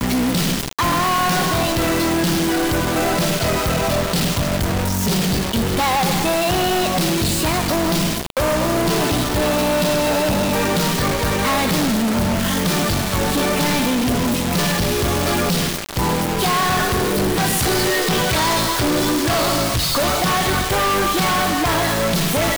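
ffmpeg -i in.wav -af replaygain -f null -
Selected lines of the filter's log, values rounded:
track_gain = +1.9 dB
track_peak = 0.108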